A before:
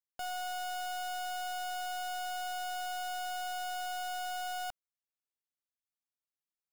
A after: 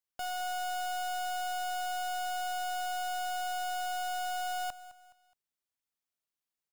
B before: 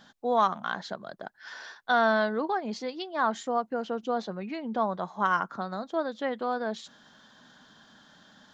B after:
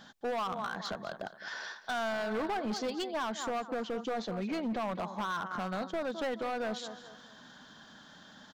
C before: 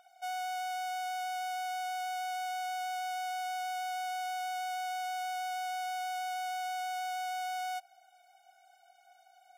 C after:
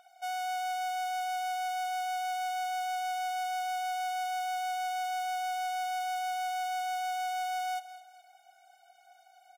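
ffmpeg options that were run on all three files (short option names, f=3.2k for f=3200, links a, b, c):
-af "aecho=1:1:210|420|630:0.158|0.0586|0.0217,alimiter=limit=-22.5dB:level=0:latency=1:release=145,asoftclip=type=hard:threshold=-32dB,volume=2dB"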